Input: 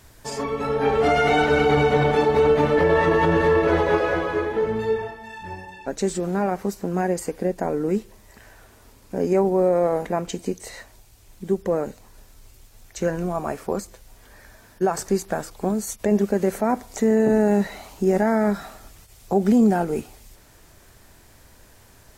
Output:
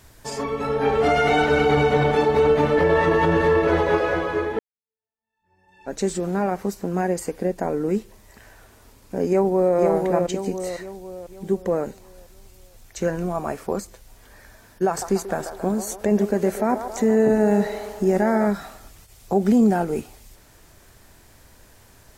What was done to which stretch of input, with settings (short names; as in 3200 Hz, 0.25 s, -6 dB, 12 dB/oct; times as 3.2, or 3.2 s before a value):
4.59–5.93 fade in exponential
9.28–9.76 echo throw 0.5 s, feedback 45%, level -3.5 dB
14.88–18.47 band-limited delay 0.137 s, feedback 63%, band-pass 830 Hz, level -8 dB